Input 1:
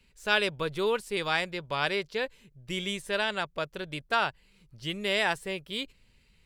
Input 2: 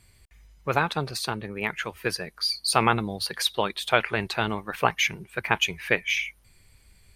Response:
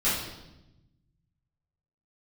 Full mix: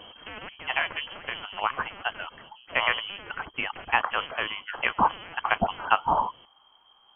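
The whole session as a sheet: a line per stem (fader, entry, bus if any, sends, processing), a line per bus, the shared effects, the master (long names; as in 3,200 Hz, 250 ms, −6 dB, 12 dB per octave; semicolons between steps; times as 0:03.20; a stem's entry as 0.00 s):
−3.5 dB, 0.00 s, no send, every bin compressed towards the loudest bin 10 to 1; automatic ducking −8 dB, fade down 0.85 s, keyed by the second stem
−7.0 dB, 0.00 s, no send, parametric band 2,100 Hz +13.5 dB 0.72 octaves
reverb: not used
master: voice inversion scrambler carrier 3,200 Hz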